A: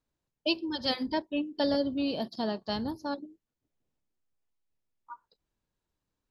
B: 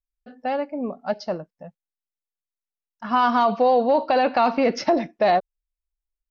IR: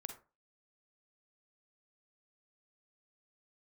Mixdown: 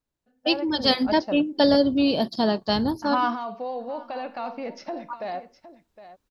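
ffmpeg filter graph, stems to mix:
-filter_complex "[0:a]volume=-1.5dB,asplit=2[link_01][link_02];[1:a]volume=-16.5dB,asplit=3[link_03][link_04][link_05];[link_04]volume=-13dB[link_06];[link_05]volume=-23dB[link_07];[link_02]apad=whole_len=277846[link_08];[link_03][link_08]sidechaingate=range=-12dB:threshold=-50dB:ratio=16:detection=peak[link_09];[2:a]atrim=start_sample=2205[link_10];[link_06][link_10]afir=irnorm=-1:irlink=0[link_11];[link_07]aecho=0:1:762:1[link_12];[link_01][link_09][link_11][link_12]amix=inputs=4:normalize=0,dynaudnorm=framelen=110:gausssize=9:maxgain=11dB"

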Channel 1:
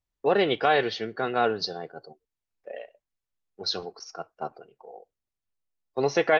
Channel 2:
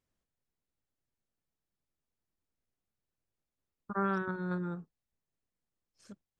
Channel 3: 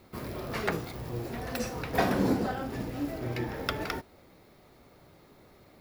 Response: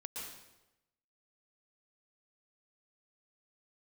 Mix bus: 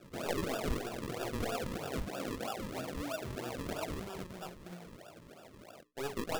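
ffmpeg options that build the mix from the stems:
-filter_complex "[0:a]aeval=exprs='(tanh(8.91*val(0)+0.55)-tanh(0.55))/8.91':channel_layout=same,volume=-8dB[link_01];[1:a]volume=-8.5dB,asplit=2[link_02][link_03];[link_03]volume=-8.5dB[link_04];[2:a]lowpass=frequency=680:width_type=q:width=4.9,volume=1.5dB[link_05];[link_02][link_05]amix=inputs=2:normalize=0,highpass=110,lowpass=2400,acompressor=threshold=-33dB:ratio=8,volume=0dB[link_06];[3:a]atrim=start_sample=2205[link_07];[link_04][link_07]afir=irnorm=-1:irlink=0[link_08];[link_01][link_06][link_08]amix=inputs=3:normalize=0,bandreject=frequency=60:width_type=h:width=6,bandreject=frequency=120:width_type=h:width=6,bandreject=frequency=180:width_type=h:width=6,bandreject=frequency=240:width_type=h:width=6,bandreject=frequency=300:width_type=h:width=6,bandreject=frequency=360:width_type=h:width=6,bandreject=frequency=420:width_type=h:width=6,flanger=delay=16.5:depth=7:speed=2.3,acrusher=samples=41:mix=1:aa=0.000001:lfo=1:lforange=41:lforate=3.1"

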